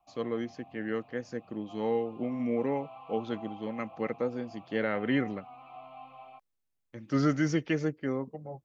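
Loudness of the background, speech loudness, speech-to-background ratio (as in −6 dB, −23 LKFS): −50.5 LKFS, −32.5 LKFS, 18.0 dB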